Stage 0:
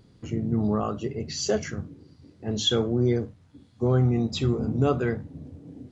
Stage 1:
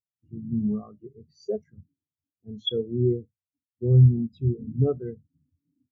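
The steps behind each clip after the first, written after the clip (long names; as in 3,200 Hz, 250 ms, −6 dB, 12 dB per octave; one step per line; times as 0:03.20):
every bin expanded away from the loudest bin 2.5 to 1
level +3.5 dB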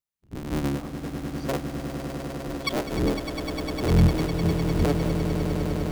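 sub-harmonics by changed cycles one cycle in 3, inverted
in parallel at +0.5 dB: downward compressor, threshold −31 dBFS, peak gain reduction 18 dB
on the sum: echo that builds up and dies away 101 ms, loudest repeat 8, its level −10.5 dB
level −4 dB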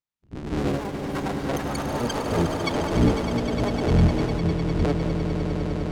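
high-frequency loss of the air 75 metres
delay with pitch and tempo change per echo 208 ms, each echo +6 semitones, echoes 3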